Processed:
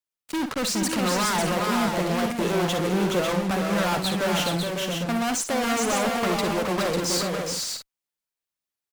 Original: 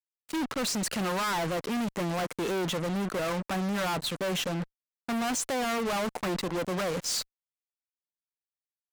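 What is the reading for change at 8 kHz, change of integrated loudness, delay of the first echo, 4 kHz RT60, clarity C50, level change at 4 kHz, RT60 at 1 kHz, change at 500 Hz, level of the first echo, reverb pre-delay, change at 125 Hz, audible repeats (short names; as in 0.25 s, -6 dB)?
+6.5 dB, +6.0 dB, 55 ms, none, none, +6.5 dB, none, +6.5 dB, -11.0 dB, none, +6.5 dB, 5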